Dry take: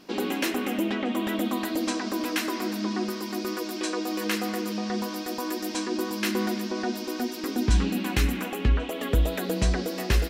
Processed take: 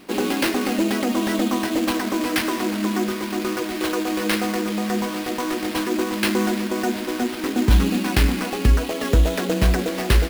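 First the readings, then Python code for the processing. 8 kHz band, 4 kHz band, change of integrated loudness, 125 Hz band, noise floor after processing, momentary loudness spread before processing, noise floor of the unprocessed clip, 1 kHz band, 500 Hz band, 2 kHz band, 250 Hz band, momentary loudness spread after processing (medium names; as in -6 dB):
+5.0 dB, +5.0 dB, +6.0 dB, +6.0 dB, -29 dBFS, 5 LU, -35 dBFS, +6.0 dB, +6.0 dB, +6.0 dB, +6.0 dB, 5 LU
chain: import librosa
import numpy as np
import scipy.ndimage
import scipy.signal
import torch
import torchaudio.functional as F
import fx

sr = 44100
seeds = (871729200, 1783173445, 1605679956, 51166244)

y = fx.sample_hold(x, sr, seeds[0], rate_hz=7100.0, jitter_pct=20)
y = y * librosa.db_to_amplitude(6.0)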